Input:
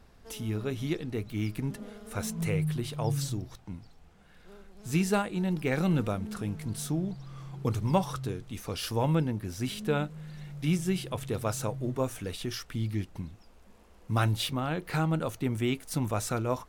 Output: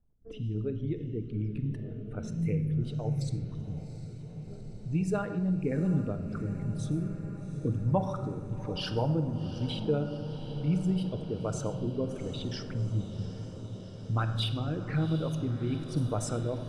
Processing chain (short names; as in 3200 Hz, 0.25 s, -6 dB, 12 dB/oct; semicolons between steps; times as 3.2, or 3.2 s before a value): formant sharpening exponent 2; rotary speaker horn 1.1 Hz; gate -54 dBFS, range -15 dB; on a send at -7.5 dB: reverb RT60 1.4 s, pre-delay 7 ms; on the sum: low-pass opened by the level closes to 1400 Hz, open at -25 dBFS; in parallel at +0.5 dB: compressor, threshold -37 dBFS, peak gain reduction 16.5 dB; on the sum: diffused feedback echo 0.759 s, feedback 73%, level -13 dB; gain -3.5 dB